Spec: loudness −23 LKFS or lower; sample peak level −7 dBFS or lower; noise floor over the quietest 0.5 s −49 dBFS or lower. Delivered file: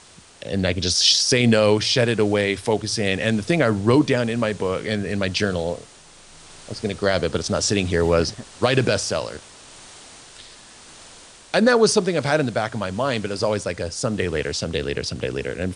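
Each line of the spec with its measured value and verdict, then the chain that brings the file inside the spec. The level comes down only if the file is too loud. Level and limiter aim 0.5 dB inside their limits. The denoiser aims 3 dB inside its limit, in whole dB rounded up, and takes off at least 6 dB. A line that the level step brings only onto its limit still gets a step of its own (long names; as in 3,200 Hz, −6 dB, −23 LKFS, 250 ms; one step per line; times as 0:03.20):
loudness −21.0 LKFS: out of spec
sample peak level −5.0 dBFS: out of spec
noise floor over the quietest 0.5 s −47 dBFS: out of spec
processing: level −2.5 dB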